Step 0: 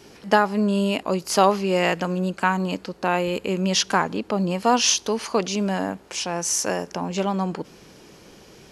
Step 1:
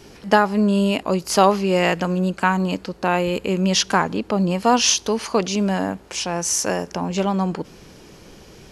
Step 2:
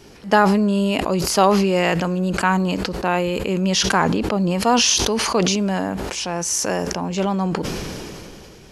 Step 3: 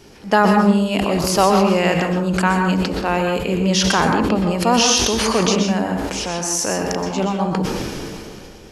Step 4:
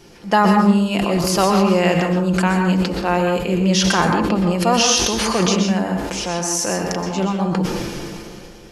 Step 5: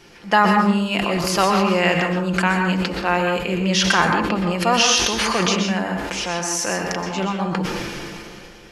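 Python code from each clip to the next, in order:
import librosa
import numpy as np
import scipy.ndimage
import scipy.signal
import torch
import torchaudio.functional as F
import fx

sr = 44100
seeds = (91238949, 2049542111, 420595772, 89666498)

y1 = fx.low_shelf(x, sr, hz=85.0, db=11.0)
y1 = y1 * librosa.db_to_amplitude(2.0)
y2 = fx.sustainer(y1, sr, db_per_s=21.0)
y2 = y2 * librosa.db_to_amplitude(-1.0)
y3 = fx.rev_plate(y2, sr, seeds[0], rt60_s=0.55, hf_ratio=0.5, predelay_ms=110, drr_db=3.0)
y4 = y3 + 0.4 * np.pad(y3, (int(5.8 * sr / 1000.0), 0))[:len(y3)]
y4 = y4 * librosa.db_to_amplitude(-1.0)
y5 = fx.peak_eq(y4, sr, hz=2000.0, db=8.5, octaves=2.2)
y5 = y5 * librosa.db_to_amplitude(-4.5)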